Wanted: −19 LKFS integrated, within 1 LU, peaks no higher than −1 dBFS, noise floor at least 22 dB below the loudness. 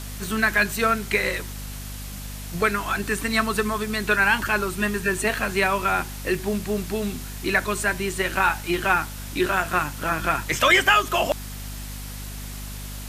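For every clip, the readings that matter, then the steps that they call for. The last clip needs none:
mains hum 50 Hz; hum harmonics up to 250 Hz; level of the hum −33 dBFS; background noise floor −35 dBFS; target noise floor −45 dBFS; integrated loudness −22.5 LKFS; sample peak −6.0 dBFS; target loudness −19.0 LKFS
→ hum removal 50 Hz, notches 5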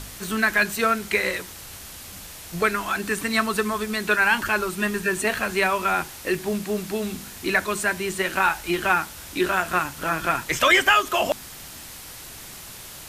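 mains hum none found; background noise floor −40 dBFS; target noise floor −45 dBFS
→ broadband denoise 6 dB, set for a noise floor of −40 dBFS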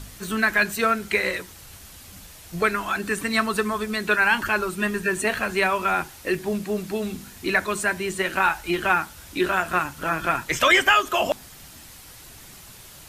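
background noise floor −45 dBFS; integrated loudness −23.0 LKFS; sample peak −6.5 dBFS; target loudness −19.0 LKFS
→ level +4 dB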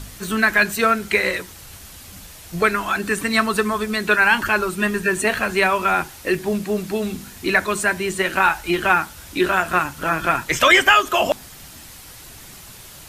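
integrated loudness −19.0 LKFS; sample peak −2.5 dBFS; background noise floor −41 dBFS

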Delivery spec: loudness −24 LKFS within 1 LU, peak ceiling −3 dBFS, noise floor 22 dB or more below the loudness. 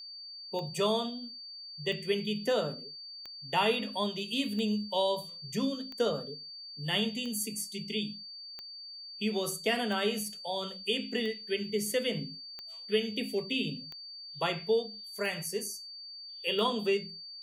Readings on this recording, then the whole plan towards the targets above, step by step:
number of clicks 13; interfering tone 4,600 Hz; level of the tone −43 dBFS; integrated loudness −33.0 LKFS; sample peak −16.5 dBFS; target loudness −24.0 LKFS
→ click removal
notch filter 4,600 Hz, Q 30
level +9 dB

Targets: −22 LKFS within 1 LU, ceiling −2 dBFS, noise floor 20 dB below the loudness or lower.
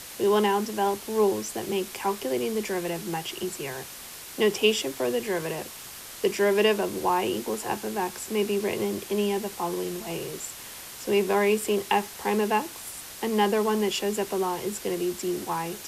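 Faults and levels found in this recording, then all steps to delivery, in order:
background noise floor −42 dBFS; target noise floor −47 dBFS; integrated loudness −27.0 LKFS; sample peak −8.0 dBFS; target loudness −22.0 LKFS
→ broadband denoise 6 dB, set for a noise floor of −42 dBFS
level +5 dB

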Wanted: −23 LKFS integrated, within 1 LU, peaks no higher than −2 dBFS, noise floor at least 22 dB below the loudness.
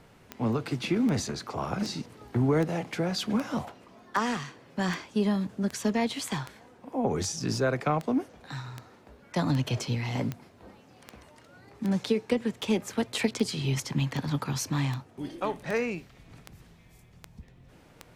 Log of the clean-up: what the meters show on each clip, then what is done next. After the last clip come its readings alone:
number of clicks 24; integrated loudness −30.0 LKFS; sample peak −12.0 dBFS; target loudness −23.0 LKFS
→ click removal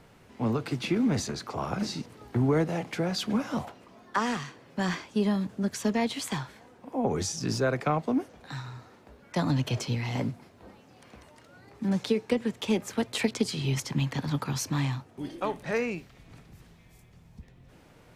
number of clicks 0; integrated loudness −30.0 LKFS; sample peak −12.0 dBFS; target loudness −23.0 LKFS
→ level +7 dB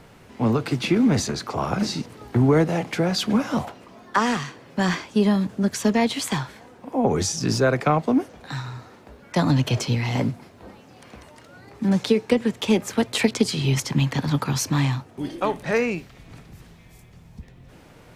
integrated loudness −23.0 LKFS; sample peak −5.0 dBFS; background noise floor −49 dBFS

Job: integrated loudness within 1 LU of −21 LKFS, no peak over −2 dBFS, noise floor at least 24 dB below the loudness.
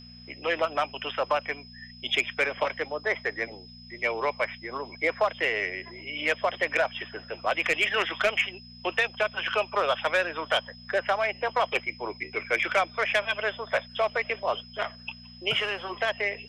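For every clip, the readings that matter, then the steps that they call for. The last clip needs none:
mains hum 60 Hz; hum harmonics up to 240 Hz; level of the hum −47 dBFS; interfering tone 5,100 Hz; level of the tone −48 dBFS; integrated loudness −28.0 LKFS; sample peak −14.0 dBFS; target loudness −21.0 LKFS
→ hum removal 60 Hz, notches 4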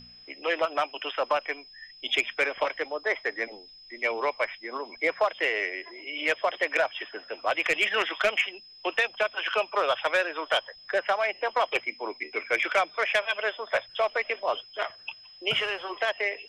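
mains hum none found; interfering tone 5,100 Hz; level of the tone −48 dBFS
→ notch filter 5,100 Hz, Q 30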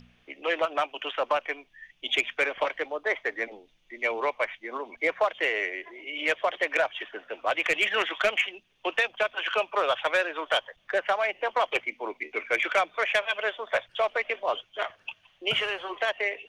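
interfering tone none found; integrated loudness −28.0 LKFS; sample peak −14.0 dBFS; target loudness −21.0 LKFS
→ level +7 dB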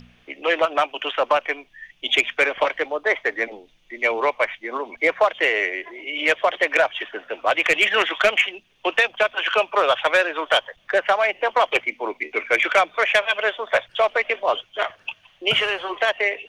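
integrated loudness −21.0 LKFS; sample peak −7.0 dBFS; background noise floor −59 dBFS

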